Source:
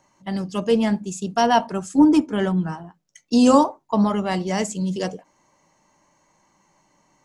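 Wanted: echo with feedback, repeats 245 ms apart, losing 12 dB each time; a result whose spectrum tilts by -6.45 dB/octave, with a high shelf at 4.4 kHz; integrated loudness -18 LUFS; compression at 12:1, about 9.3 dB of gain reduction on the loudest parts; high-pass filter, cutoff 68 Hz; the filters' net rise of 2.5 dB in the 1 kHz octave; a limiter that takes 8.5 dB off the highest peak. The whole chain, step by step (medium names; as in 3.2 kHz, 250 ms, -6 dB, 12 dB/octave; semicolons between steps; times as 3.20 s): high-pass 68 Hz; peaking EQ 1 kHz +3.5 dB; treble shelf 4.4 kHz -8 dB; compression 12:1, threshold -18 dBFS; peak limiter -17.5 dBFS; feedback delay 245 ms, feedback 25%, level -12 dB; trim +9 dB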